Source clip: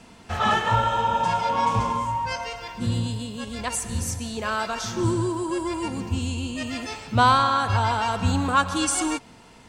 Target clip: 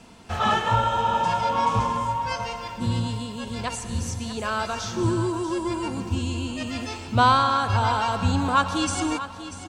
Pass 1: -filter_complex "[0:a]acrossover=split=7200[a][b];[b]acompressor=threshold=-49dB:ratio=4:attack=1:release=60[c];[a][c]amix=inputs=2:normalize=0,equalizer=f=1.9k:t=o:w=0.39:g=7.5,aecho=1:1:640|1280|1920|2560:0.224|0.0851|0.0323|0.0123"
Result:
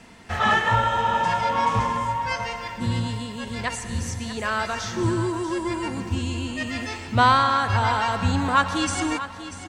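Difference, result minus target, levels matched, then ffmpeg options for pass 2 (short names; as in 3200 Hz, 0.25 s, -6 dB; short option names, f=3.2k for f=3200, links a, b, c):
2000 Hz band +4.0 dB
-filter_complex "[0:a]acrossover=split=7200[a][b];[b]acompressor=threshold=-49dB:ratio=4:attack=1:release=60[c];[a][c]amix=inputs=2:normalize=0,equalizer=f=1.9k:t=o:w=0.39:g=-3.5,aecho=1:1:640|1280|1920|2560:0.224|0.0851|0.0323|0.0123"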